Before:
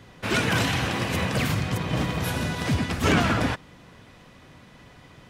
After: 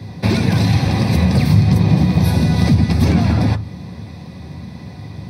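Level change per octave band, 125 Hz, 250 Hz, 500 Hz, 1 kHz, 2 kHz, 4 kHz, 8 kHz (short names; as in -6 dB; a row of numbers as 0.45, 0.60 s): +14.0, +11.5, +4.0, +2.0, -1.5, +2.0, +0.5 dB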